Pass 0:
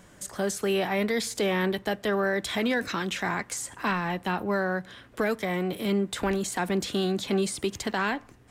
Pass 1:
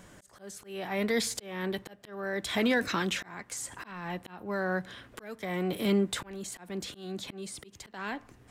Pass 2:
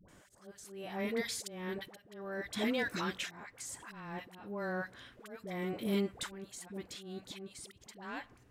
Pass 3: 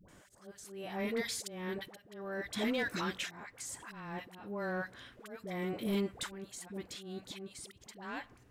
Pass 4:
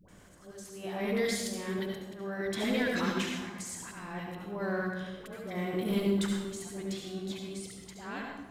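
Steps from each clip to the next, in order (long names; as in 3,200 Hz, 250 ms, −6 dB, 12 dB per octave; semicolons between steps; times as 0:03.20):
volume swells 570 ms
all-pass dispersion highs, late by 86 ms, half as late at 670 Hz; level −6.5 dB
soft clipping −25.5 dBFS, distortion −21 dB; level +1 dB
convolution reverb RT60 1.2 s, pre-delay 67 ms, DRR 0.5 dB; level +1 dB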